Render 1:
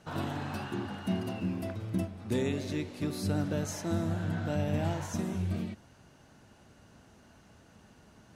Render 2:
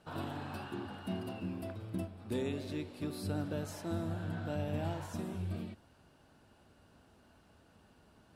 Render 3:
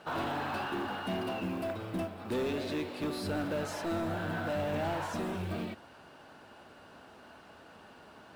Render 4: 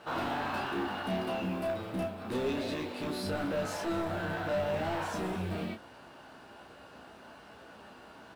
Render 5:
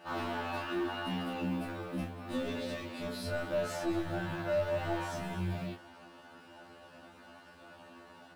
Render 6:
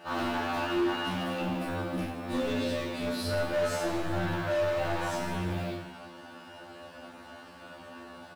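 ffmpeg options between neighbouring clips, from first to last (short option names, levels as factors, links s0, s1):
-af "equalizer=f=125:t=o:w=0.33:g=-6,equalizer=f=200:t=o:w=0.33:g=-4,equalizer=f=2000:t=o:w=0.33:g=-5,equalizer=f=6300:t=o:w=0.33:g=-10,volume=0.596"
-filter_complex "[0:a]asplit=2[s0][s1];[s1]highpass=f=720:p=1,volume=12.6,asoftclip=type=tanh:threshold=0.0596[s2];[s0][s2]amix=inputs=2:normalize=0,lowpass=f=2200:p=1,volume=0.501,acrusher=bits=7:mode=log:mix=0:aa=0.000001"
-filter_complex "[0:a]asoftclip=type=tanh:threshold=0.0355,asplit=2[s0][s1];[s1]aecho=0:1:15|32:0.531|0.596[s2];[s0][s2]amix=inputs=2:normalize=0"
-af "afftfilt=real='re*2*eq(mod(b,4),0)':imag='im*2*eq(mod(b,4),0)':win_size=2048:overlap=0.75"
-filter_complex "[0:a]asoftclip=type=hard:threshold=0.0224,asplit=2[s0][s1];[s1]aecho=0:1:40|92|159.6|247.5|361.7:0.631|0.398|0.251|0.158|0.1[s2];[s0][s2]amix=inputs=2:normalize=0,volume=1.68"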